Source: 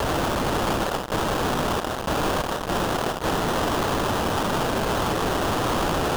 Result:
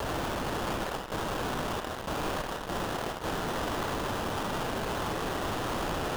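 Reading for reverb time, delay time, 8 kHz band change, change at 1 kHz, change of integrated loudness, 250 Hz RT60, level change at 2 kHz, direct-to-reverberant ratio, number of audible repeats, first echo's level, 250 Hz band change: 0.60 s, none, -9.0 dB, -8.5 dB, -8.5 dB, 0.85 s, -7.5 dB, 5.0 dB, none, none, -9.0 dB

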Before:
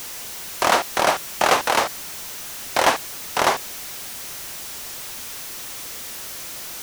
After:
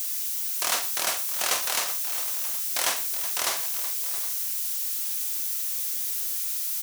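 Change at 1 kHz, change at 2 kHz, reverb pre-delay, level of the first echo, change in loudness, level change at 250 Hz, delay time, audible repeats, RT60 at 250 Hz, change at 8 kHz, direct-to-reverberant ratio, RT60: -14.0 dB, -9.0 dB, none, -10.5 dB, -1.5 dB, -16.5 dB, 44 ms, 5, none, +2.0 dB, none, none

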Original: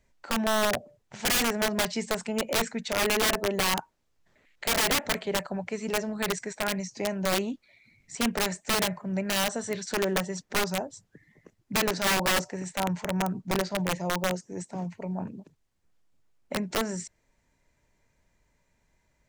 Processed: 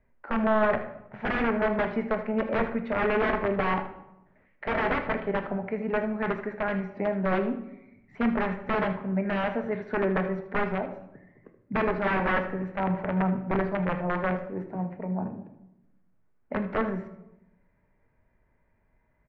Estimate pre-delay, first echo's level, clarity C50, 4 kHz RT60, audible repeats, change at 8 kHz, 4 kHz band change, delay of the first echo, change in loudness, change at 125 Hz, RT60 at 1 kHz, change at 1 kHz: 4 ms, -13.5 dB, 9.5 dB, 0.55 s, 1, under -40 dB, -16.5 dB, 78 ms, 0.0 dB, +2.5 dB, 0.85 s, +2.0 dB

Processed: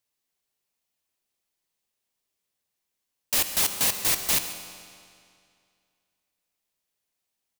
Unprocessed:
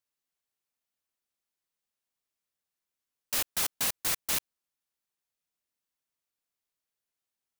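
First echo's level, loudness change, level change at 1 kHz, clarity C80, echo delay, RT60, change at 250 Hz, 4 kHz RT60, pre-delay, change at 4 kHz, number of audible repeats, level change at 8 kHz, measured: -16.5 dB, +6.0 dB, +5.0 dB, 9.0 dB, 0.139 s, 2.3 s, +6.5 dB, 2.1 s, 19 ms, +6.5 dB, 1, +6.5 dB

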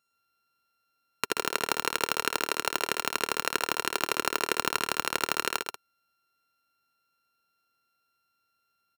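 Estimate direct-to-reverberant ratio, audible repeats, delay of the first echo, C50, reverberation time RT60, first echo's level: none, 3, 66 ms, none, none, -17.5 dB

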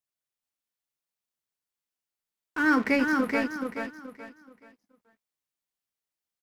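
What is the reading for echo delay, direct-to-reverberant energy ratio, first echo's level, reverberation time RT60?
0.428 s, none, -4.0 dB, none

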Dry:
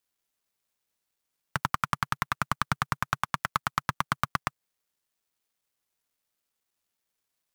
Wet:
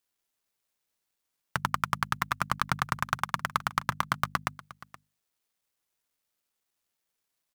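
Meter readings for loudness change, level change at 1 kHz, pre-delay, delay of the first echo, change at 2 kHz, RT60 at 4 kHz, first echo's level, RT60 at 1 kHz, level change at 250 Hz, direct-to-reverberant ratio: 0.0 dB, 0.0 dB, none, 0.473 s, 0.0 dB, none, -19.0 dB, none, -1.0 dB, none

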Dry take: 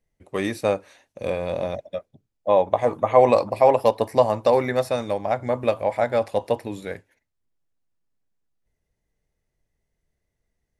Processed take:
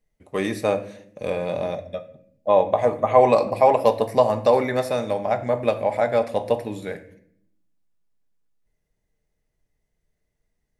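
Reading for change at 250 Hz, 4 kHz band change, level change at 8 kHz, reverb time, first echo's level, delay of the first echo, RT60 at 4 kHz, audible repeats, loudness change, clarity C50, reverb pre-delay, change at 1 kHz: +1.0 dB, +0.5 dB, n/a, 0.65 s, none, none, 0.45 s, none, +0.5 dB, 14.0 dB, 4 ms, +1.0 dB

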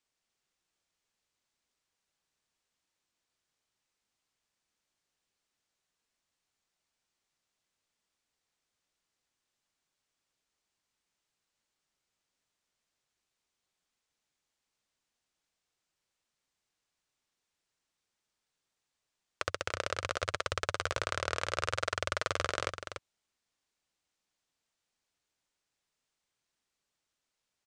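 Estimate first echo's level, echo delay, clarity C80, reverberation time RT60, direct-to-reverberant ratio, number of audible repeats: -8.0 dB, 0.291 s, none, none, none, 1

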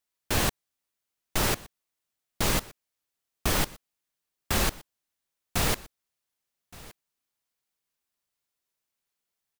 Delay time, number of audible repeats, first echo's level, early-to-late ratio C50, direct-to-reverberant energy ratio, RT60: 1.17 s, 1, -21.0 dB, none, none, none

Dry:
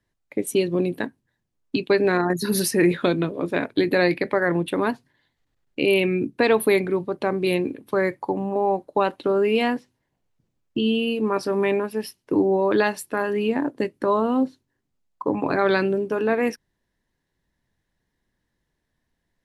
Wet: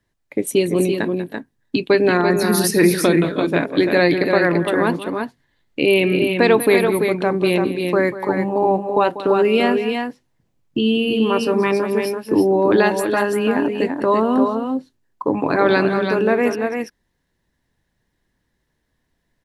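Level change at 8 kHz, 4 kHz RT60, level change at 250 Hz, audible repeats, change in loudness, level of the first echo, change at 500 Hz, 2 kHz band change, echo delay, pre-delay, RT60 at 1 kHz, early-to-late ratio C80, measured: +5.5 dB, none, +5.5 dB, 2, +5.0 dB, -14.0 dB, +5.0 dB, +5.0 dB, 0.192 s, none, none, none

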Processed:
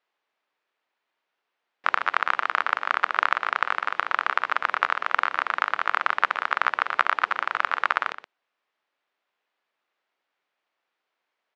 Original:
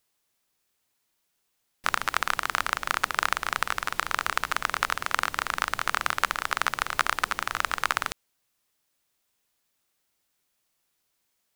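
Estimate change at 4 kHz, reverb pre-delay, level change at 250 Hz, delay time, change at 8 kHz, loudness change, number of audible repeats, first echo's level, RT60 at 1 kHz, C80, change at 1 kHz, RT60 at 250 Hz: -3.5 dB, none, -4.5 dB, 0.122 s, under -15 dB, +3.0 dB, 1, -12.5 dB, none, none, +4.0 dB, none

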